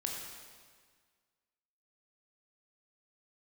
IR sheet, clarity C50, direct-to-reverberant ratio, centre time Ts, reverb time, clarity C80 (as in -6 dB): 1.5 dB, -0.5 dB, 78 ms, 1.7 s, 3.0 dB